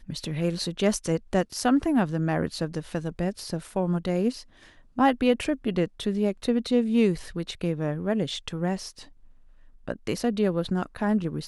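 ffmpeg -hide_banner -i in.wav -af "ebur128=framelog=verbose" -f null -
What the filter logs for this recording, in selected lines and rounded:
Integrated loudness:
  I:         -26.7 LUFS
  Threshold: -37.2 LUFS
Loudness range:
  LRA:         4.3 LU
  Threshold: -47.2 LUFS
  LRA low:   -29.8 LUFS
  LRA high:  -25.5 LUFS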